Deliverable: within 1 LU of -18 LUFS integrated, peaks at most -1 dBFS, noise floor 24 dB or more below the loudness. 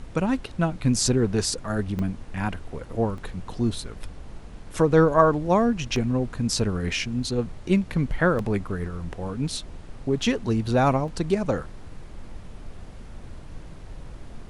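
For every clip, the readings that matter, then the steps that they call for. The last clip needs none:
dropouts 5; longest dropout 2.0 ms; noise floor -42 dBFS; noise floor target -49 dBFS; loudness -24.5 LUFS; peak level -4.0 dBFS; loudness target -18.0 LUFS
-> interpolate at 1.99/3.18/5.96/8.39/11.08 s, 2 ms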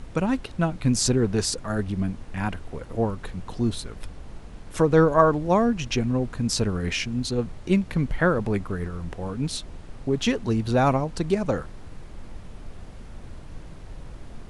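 dropouts 0; noise floor -42 dBFS; noise floor target -49 dBFS
-> noise print and reduce 7 dB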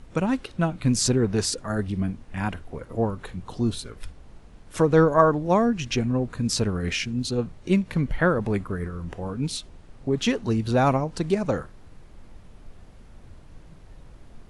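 noise floor -48 dBFS; noise floor target -49 dBFS
-> noise print and reduce 6 dB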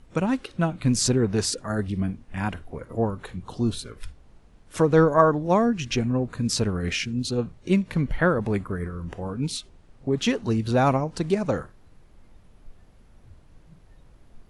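noise floor -54 dBFS; loudness -24.5 LUFS; peak level -4.0 dBFS; loudness target -18.0 LUFS
-> trim +6.5 dB; peak limiter -1 dBFS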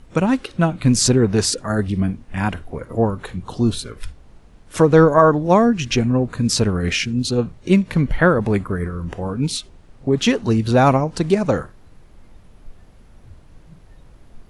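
loudness -18.5 LUFS; peak level -1.0 dBFS; noise floor -47 dBFS

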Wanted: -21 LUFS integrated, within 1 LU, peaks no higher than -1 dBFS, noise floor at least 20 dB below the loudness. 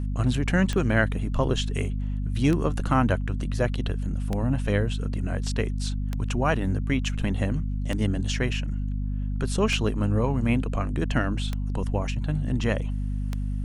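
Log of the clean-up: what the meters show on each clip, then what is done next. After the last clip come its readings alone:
clicks found 8; hum 50 Hz; highest harmonic 250 Hz; hum level -25 dBFS; loudness -26.5 LUFS; peak level -8.0 dBFS; loudness target -21.0 LUFS
-> de-click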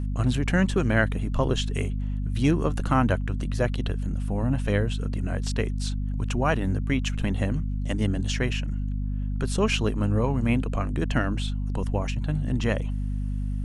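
clicks found 0; hum 50 Hz; highest harmonic 250 Hz; hum level -25 dBFS
-> hum notches 50/100/150/200/250 Hz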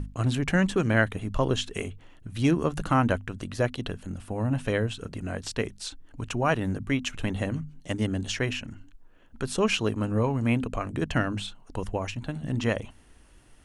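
hum not found; loudness -28.5 LUFS; peak level -9.5 dBFS; loudness target -21.0 LUFS
-> trim +7.5 dB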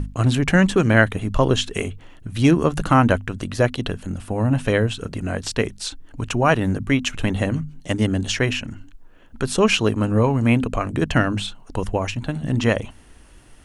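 loudness -21.0 LUFS; peak level -2.0 dBFS; noise floor -47 dBFS

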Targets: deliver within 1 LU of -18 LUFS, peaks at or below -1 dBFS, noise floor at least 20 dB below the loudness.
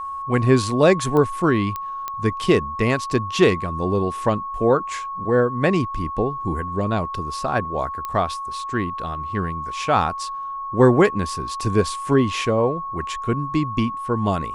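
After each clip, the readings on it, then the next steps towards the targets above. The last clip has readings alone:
clicks found 4; steady tone 1.1 kHz; tone level -27 dBFS; loudness -21.5 LUFS; peak level -3.0 dBFS; loudness target -18.0 LUFS
-> de-click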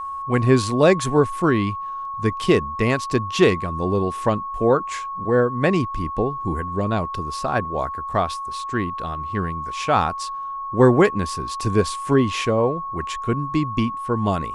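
clicks found 0; steady tone 1.1 kHz; tone level -27 dBFS
-> band-stop 1.1 kHz, Q 30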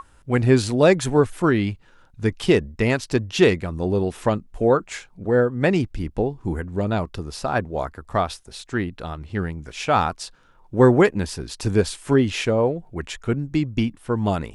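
steady tone not found; loudness -22.0 LUFS; peak level -3.0 dBFS; loudness target -18.0 LUFS
-> trim +4 dB; peak limiter -1 dBFS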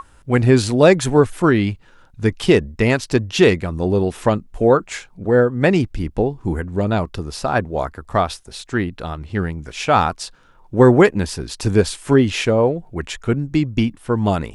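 loudness -18.0 LUFS; peak level -1.0 dBFS; noise floor -50 dBFS

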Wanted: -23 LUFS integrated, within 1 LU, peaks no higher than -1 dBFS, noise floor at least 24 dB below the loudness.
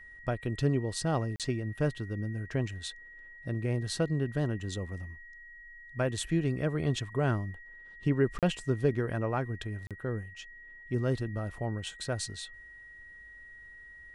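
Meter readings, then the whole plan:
dropouts 3; longest dropout 37 ms; steady tone 1.9 kHz; tone level -48 dBFS; loudness -32.5 LUFS; peak level -14.5 dBFS; loudness target -23.0 LUFS
-> interpolate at 1.36/8.39/9.87 s, 37 ms; band-stop 1.9 kHz, Q 30; trim +9.5 dB

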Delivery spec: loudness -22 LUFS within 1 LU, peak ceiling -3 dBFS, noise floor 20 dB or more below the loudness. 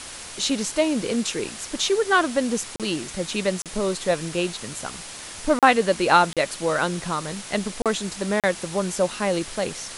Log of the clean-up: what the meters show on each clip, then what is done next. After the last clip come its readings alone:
dropouts 6; longest dropout 37 ms; noise floor -38 dBFS; noise floor target -44 dBFS; loudness -23.5 LUFS; peak level -3.0 dBFS; loudness target -22.0 LUFS
-> interpolate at 2.76/3.62/5.59/6.33/7.82/8.40 s, 37 ms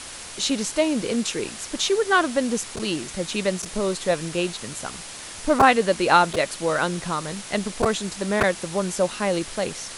dropouts 0; noise floor -38 dBFS; noise floor target -44 dBFS
-> noise print and reduce 6 dB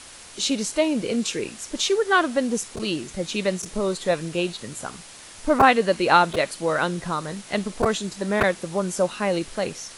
noise floor -44 dBFS; loudness -23.5 LUFS; peak level -3.0 dBFS; loudness target -22.0 LUFS
-> trim +1.5 dB; peak limiter -3 dBFS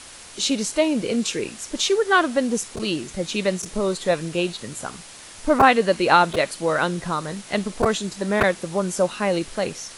loudness -22.0 LUFS; peak level -3.0 dBFS; noise floor -42 dBFS

